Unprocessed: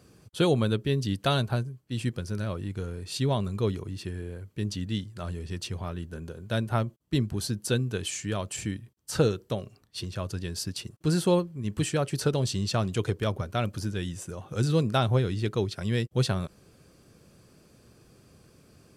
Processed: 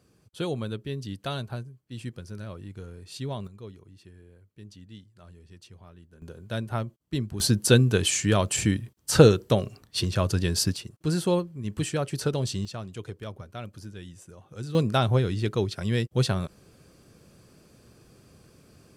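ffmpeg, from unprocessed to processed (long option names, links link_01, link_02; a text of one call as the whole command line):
ffmpeg -i in.wav -af "asetnsamples=nb_out_samples=441:pad=0,asendcmd='3.47 volume volume -15.5dB;6.22 volume volume -3dB;7.4 volume volume 8.5dB;10.76 volume volume -1dB;12.65 volume volume -10dB;14.75 volume volume 1.5dB',volume=-7dB" out.wav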